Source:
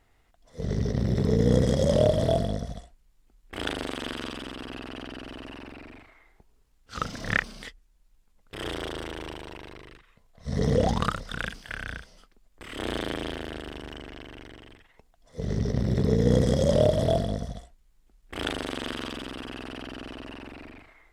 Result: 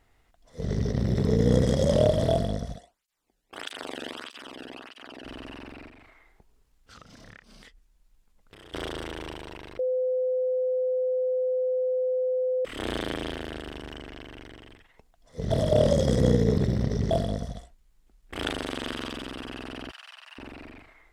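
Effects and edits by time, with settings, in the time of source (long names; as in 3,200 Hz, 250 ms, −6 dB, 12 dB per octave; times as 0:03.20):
0:02.76–0:05.25: through-zero flanger with one copy inverted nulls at 1.6 Hz, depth 1 ms
0:05.88–0:08.74: downward compressor, threshold −47 dBFS
0:09.79–0:12.65: beep over 510 Hz −23 dBFS
0:15.51–0:17.11: reverse
0:19.91–0:20.38: Bessel high-pass filter 1,400 Hz, order 8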